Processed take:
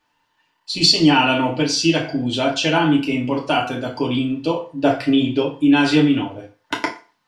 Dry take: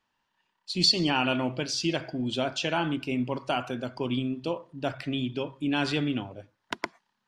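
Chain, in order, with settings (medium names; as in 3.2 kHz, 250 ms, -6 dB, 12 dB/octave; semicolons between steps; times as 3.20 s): 4.69–5.42 s: dynamic bell 530 Hz, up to +6 dB, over -41 dBFS, Q 0.79; FDN reverb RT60 0.35 s, low-frequency decay 0.8×, high-frequency decay 0.9×, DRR -2.5 dB; trim +5.5 dB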